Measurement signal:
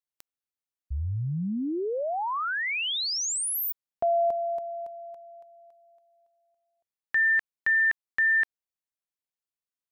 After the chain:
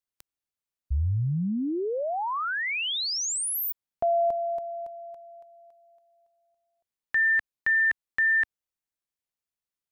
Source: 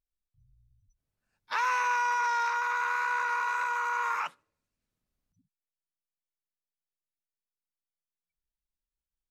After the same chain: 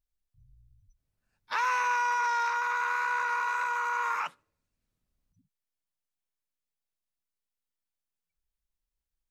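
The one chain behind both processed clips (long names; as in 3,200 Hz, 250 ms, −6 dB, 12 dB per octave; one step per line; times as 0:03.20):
low-shelf EQ 130 Hz +6.5 dB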